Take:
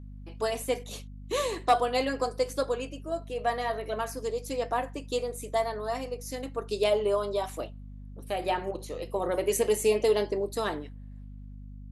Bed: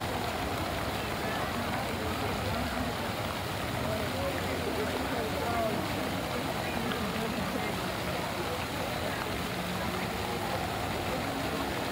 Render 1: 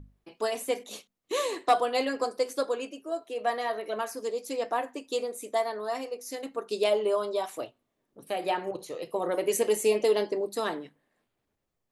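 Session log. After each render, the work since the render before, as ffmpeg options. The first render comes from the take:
-af "bandreject=f=50:t=h:w=6,bandreject=f=100:t=h:w=6,bandreject=f=150:t=h:w=6,bandreject=f=200:t=h:w=6,bandreject=f=250:t=h:w=6"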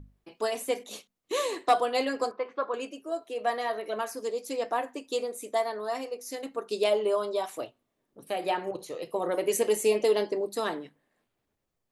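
-filter_complex "[0:a]asettb=1/sr,asplit=3[a][b][c];[a]atrim=end=2.314[d];[b]atrim=start=2.31:end=2.74,asetpts=PTS-STARTPTS,afade=t=in:d=0.004:c=qsin,afade=t=out:st=0.426:d=0.004:c=qsin,highpass=140,equalizer=f=270:t=q:w=4:g=-8,equalizer=f=510:t=q:w=4:g=-5,equalizer=f=1.1k:t=q:w=4:g=9,lowpass=f=2.6k:w=0.5412,lowpass=f=2.6k:w=1.3066[e];[c]atrim=start=2.736[f];[d][e]acrossfade=d=0.004:c1=hsin:c2=qsin[g];[g][f]acrossfade=d=0.004:c1=qsin:c2=hsin"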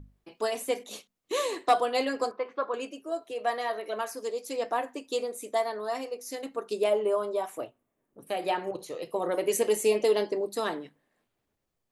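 -filter_complex "[0:a]asettb=1/sr,asplit=3[a][b][c];[a]atrim=end=3.314[d];[b]atrim=start=3.31:end=4.56,asetpts=PTS-STARTPTS,afade=t=in:d=0.004:c=qsin,afade=t=out:st=1.246:d=0.004:c=qsin,highpass=f=240:p=1[e];[c]atrim=start=4.556[f];[d][e]acrossfade=d=0.004:c1=hsin:c2=qsin[g];[g][f]acrossfade=d=0.004:c1=qsin:c2=hsin,asettb=1/sr,asplit=3[h][i][j];[h]atrim=end=6.734[k];[i]atrim=start=6.73:end=8.3,asetpts=PTS-STARTPTS,afade=t=in:d=0.004:c=qsin,afade=t=out:st=1.566:d=0.004:c=qsin,equalizer=f=4.3k:t=o:w=1.1:g=-10.5[l];[j]atrim=start=8.296[m];[k][l]acrossfade=d=0.004:c1=hsin:c2=qsin[n];[n][m]acrossfade=d=0.004:c1=qsin:c2=hsin"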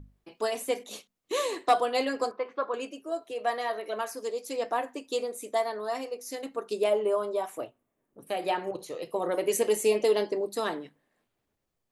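-af anull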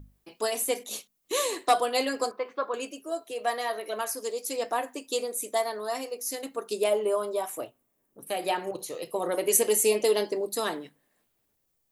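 -af "aemphasis=mode=production:type=50kf"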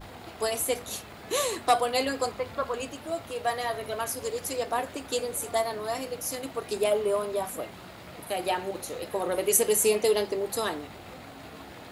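-filter_complex "[1:a]volume=-12dB[a];[0:a][a]amix=inputs=2:normalize=0"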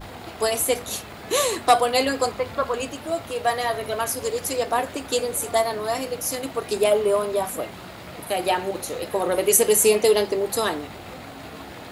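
-af "volume=6dB,alimiter=limit=-2dB:level=0:latency=1"

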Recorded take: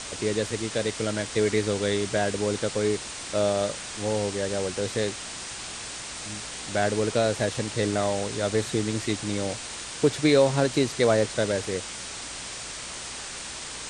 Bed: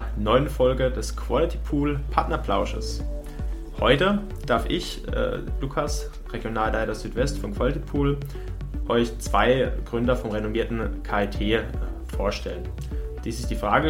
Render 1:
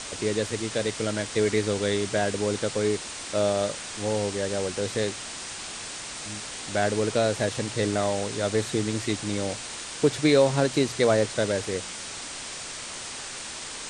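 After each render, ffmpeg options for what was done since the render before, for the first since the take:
-af "bandreject=f=60:t=h:w=4,bandreject=f=120:t=h:w=4,bandreject=f=180:t=h:w=4"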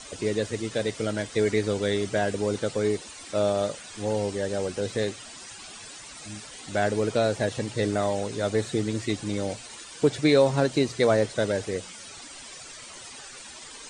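-af "afftdn=nr=12:nf=-37"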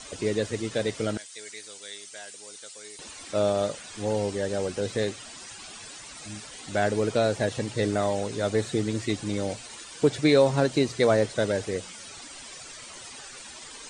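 -filter_complex "[0:a]asettb=1/sr,asplit=3[a][b][c];[a]atrim=end=1.174[d];[b]atrim=start=1.17:end=2.99,asetpts=PTS-STARTPTS,afade=t=in:d=0.004:c=qsin,afade=t=out:st=1.816:d=0.004:c=qsin,aderivative[e];[c]atrim=start=2.986[f];[d][e]acrossfade=d=0.004:c1=hsin:c2=qsin[g];[g][f]acrossfade=d=0.004:c1=qsin:c2=hsin"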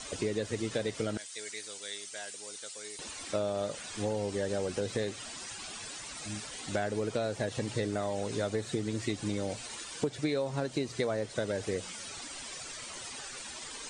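-af "acompressor=threshold=-28dB:ratio=10"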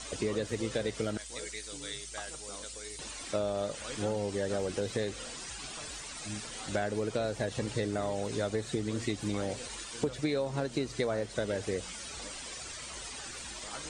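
-filter_complex "[1:a]volume=-25.5dB[a];[0:a][a]amix=inputs=2:normalize=0"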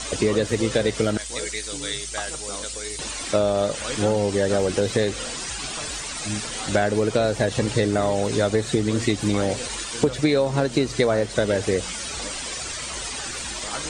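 -af "volume=11.5dB"

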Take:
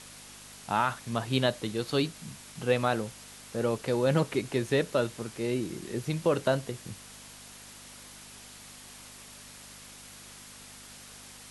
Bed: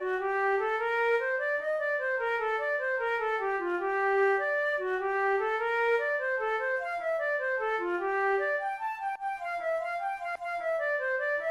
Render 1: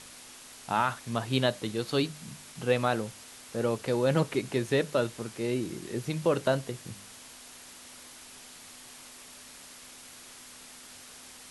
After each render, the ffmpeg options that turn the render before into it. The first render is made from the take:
-af "bandreject=f=50:t=h:w=4,bandreject=f=100:t=h:w=4,bandreject=f=150:t=h:w=4,bandreject=f=200:t=h:w=4"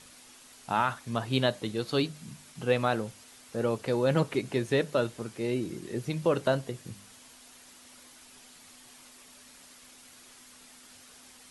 -af "afftdn=nr=6:nf=-49"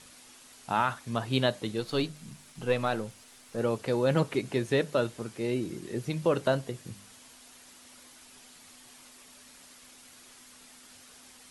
-filter_complex "[0:a]asettb=1/sr,asplit=3[a][b][c];[a]atrim=end=1.804[d];[b]atrim=start=1.8:end=3.58,asetpts=PTS-STARTPTS,afade=t=in:d=0.004:c=qsin,afade=t=out:st=1.776:d=0.004:c=qsin,aeval=exprs='if(lt(val(0),0),0.708*val(0),val(0))':c=same[e];[c]atrim=start=3.576[f];[d][e]acrossfade=d=0.004:c1=hsin:c2=qsin[g];[g][f]acrossfade=d=0.004:c1=qsin:c2=hsin"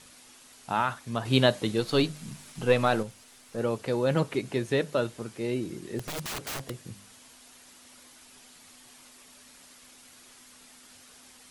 -filter_complex "[0:a]asettb=1/sr,asplit=3[a][b][c];[a]atrim=end=1.254[d];[b]atrim=start=1.25:end=3.03,asetpts=PTS-STARTPTS,afade=t=in:d=0.004:c=qsin,afade=t=out:st=1.776:d=0.004:c=qsin,acontrast=25[e];[c]atrim=start=3.026[f];[d][e]acrossfade=d=0.004:c1=hsin:c2=qsin[g];[g][f]acrossfade=d=0.004:c1=qsin:c2=hsin,asettb=1/sr,asplit=3[h][i][j];[h]atrim=end=5.994[k];[i]atrim=start=5.99:end=6.7,asetpts=PTS-STARTPTS,afade=t=in:d=0.004:c=qsin,afade=t=out:st=0.706:d=0.004:c=qsin,aeval=exprs='(mod(31.6*val(0)+1,2)-1)/31.6':c=same[l];[j]atrim=start=6.696[m];[k][l]acrossfade=d=0.004:c1=hsin:c2=qsin[n];[n][m]acrossfade=d=0.004:c1=qsin:c2=hsin"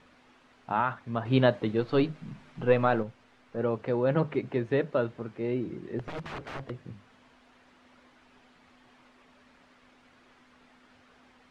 -af "lowpass=2k,bandreject=f=50:t=h:w=6,bandreject=f=100:t=h:w=6,bandreject=f=150:t=h:w=6,bandreject=f=200:t=h:w=6"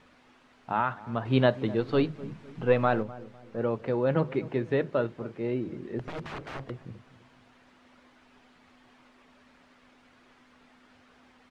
-filter_complex "[0:a]asplit=2[a][b];[b]adelay=252,lowpass=f=810:p=1,volume=-16.5dB,asplit=2[c][d];[d]adelay=252,lowpass=f=810:p=1,volume=0.42,asplit=2[e][f];[f]adelay=252,lowpass=f=810:p=1,volume=0.42,asplit=2[g][h];[h]adelay=252,lowpass=f=810:p=1,volume=0.42[i];[a][c][e][g][i]amix=inputs=5:normalize=0"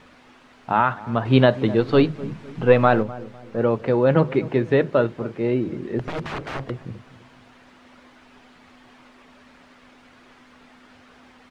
-af "volume=8.5dB,alimiter=limit=-3dB:level=0:latency=1"

